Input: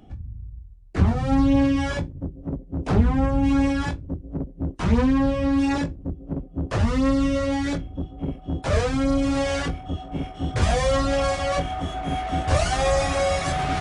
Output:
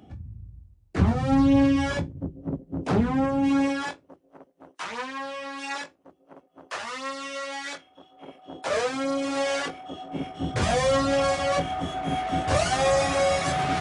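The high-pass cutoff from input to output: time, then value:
2.16 s 87 Hz
3.58 s 230 Hz
4.19 s 970 Hz
8.02 s 970 Hz
8.77 s 400 Hz
9.89 s 400 Hz
10.40 s 120 Hz

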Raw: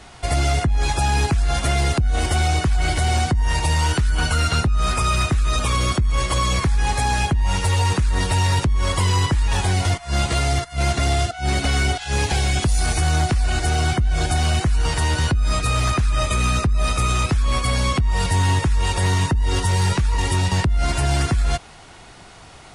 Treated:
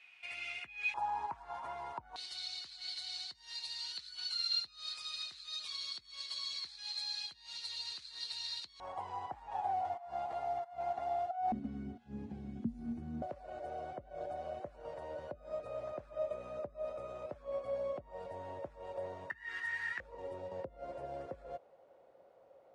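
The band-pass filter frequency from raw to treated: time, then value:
band-pass filter, Q 14
2.5 kHz
from 0.94 s 940 Hz
from 2.16 s 4.2 kHz
from 8.80 s 770 Hz
from 11.52 s 230 Hz
from 13.22 s 580 Hz
from 19.30 s 1.8 kHz
from 20.00 s 540 Hz

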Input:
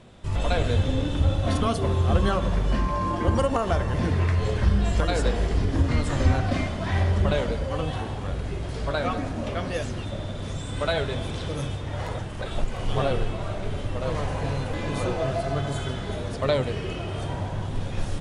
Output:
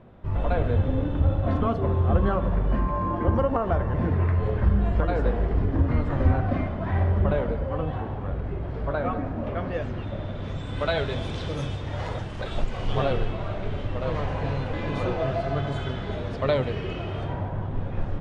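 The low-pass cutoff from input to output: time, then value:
9.33 s 1.5 kHz
10.65 s 3.1 kHz
11.19 s 5.7 kHz
12.58 s 5.7 kHz
13.44 s 3.4 kHz
17.08 s 3.4 kHz
17.52 s 1.6 kHz

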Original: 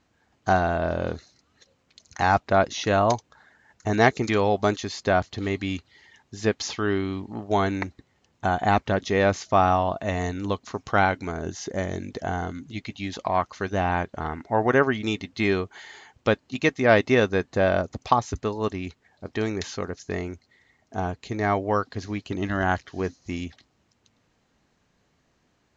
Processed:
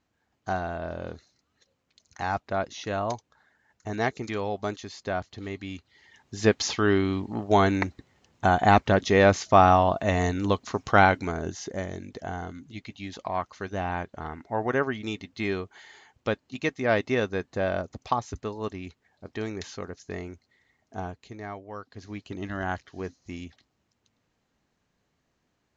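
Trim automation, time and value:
5.74 s -8.5 dB
6.40 s +2.5 dB
11.13 s +2.5 dB
11.96 s -6 dB
20.99 s -6 dB
21.67 s -17.5 dB
22.16 s -7 dB

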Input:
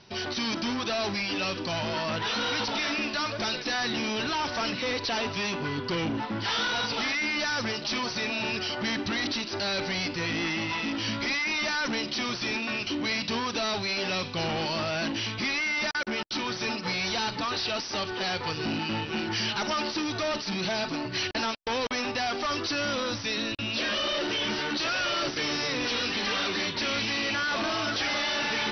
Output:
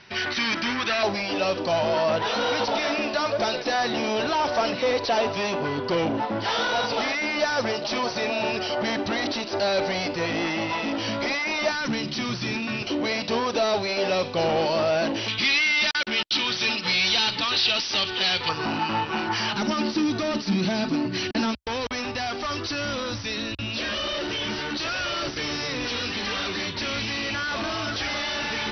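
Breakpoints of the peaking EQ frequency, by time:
peaking EQ +12 dB 1.3 oct
1.9 kHz
from 1.03 s 610 Hz
from 11.72 s 140 Hz
from 12.82 s 560 Hz
from 15.28 s 3.3 kHz
from 18.49 s 1 kHz
from 19.53 s 230 Hz
from 21.55 s 65 Hz

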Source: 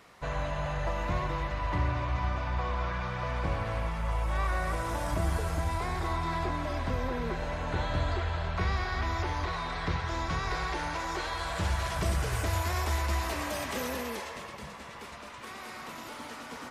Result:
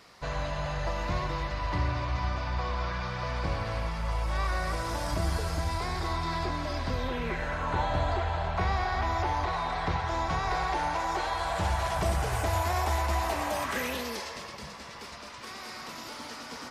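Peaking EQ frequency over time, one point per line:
peaking EQ +9.5 dB 0.63 oct
6.91 s 4.8 kHz
7.87 s 780 Hz
13.55 s 780 Hz
14.07 s 5 kHz

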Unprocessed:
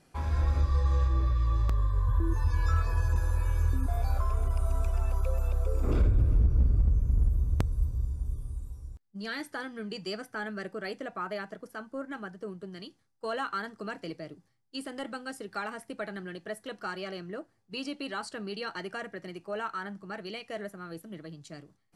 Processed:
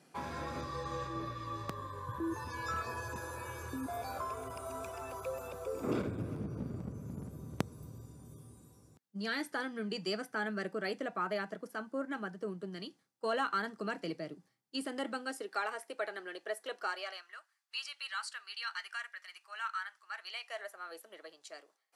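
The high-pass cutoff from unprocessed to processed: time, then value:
high-pass 24 dB/octave
14.88 s 150 Hz
15.62 s 390 Hz
16.82 s 390 Hz
17.37 s 1.2 kHz
19.98 s 1.2 kHz
20.95 s 500 Hz

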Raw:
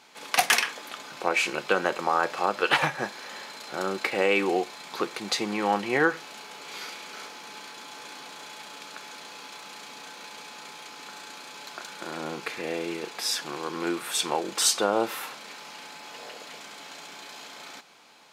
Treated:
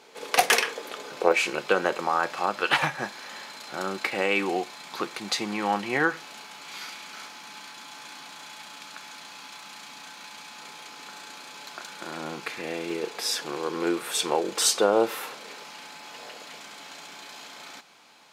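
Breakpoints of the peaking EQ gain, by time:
peaking EQ 450 Hz 0.68 oct
+13 dB
from 1.32 s +2.5 dB
from 2.06 s -4.5 dB
from 6.46 s -10.5 dB
from 10.59 s -3 dB
from 12.90 s +6.5 dB
from 15.64 s -2.5 dB

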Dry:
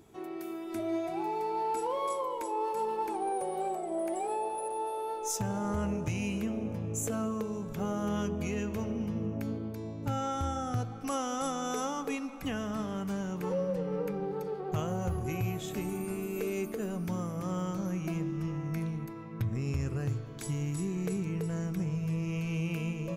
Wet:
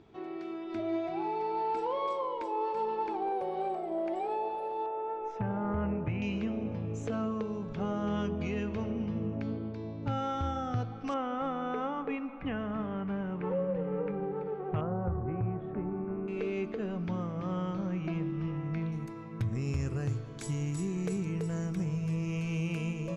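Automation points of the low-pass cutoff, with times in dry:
low-pass 24 dB/octave
4.5 kHz
from 4.86 s 2.4 kHz
from 6.22 s 4.5 kHz
from 11.14 s 2.6 kHz
from 14.81 s 1.5 kHz
from 16.28 s 4 kHz
from 18.92 s 9.4 kHz

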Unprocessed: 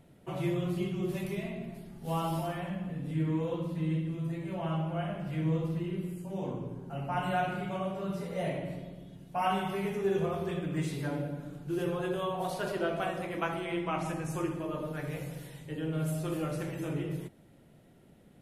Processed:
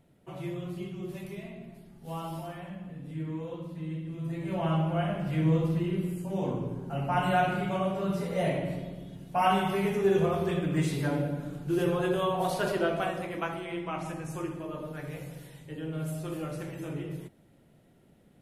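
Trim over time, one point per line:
3.99 s -5 dB
4.55 s +5 dB
12.67 s +5 dB
13.67 s -2 dB

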